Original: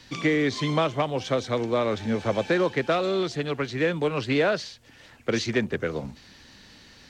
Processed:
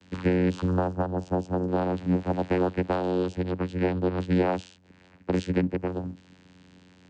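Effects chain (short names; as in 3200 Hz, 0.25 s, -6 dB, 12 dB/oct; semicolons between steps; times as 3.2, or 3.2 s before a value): 0.62–1.68 band shelf 2400 Hz -12.5 dB; vocoder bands 8, saw 90.8 Hz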